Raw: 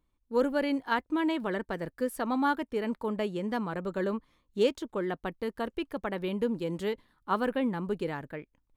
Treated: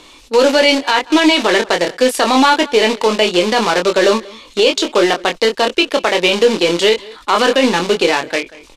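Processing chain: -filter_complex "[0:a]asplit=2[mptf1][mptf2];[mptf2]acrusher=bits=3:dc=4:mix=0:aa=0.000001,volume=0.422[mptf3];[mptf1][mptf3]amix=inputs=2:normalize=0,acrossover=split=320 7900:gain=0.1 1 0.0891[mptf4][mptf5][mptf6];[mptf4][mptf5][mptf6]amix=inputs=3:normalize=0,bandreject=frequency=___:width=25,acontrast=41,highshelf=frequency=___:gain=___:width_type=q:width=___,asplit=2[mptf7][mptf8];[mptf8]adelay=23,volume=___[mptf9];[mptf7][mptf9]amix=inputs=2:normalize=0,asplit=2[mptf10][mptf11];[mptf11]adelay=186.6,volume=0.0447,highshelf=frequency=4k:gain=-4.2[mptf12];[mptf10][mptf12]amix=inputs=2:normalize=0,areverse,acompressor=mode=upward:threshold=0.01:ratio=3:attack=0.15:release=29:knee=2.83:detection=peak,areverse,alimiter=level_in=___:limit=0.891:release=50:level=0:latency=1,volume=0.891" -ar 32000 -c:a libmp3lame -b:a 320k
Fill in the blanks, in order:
3.2k, 2.2k, 7.5, 1.5, 0.531, 6.31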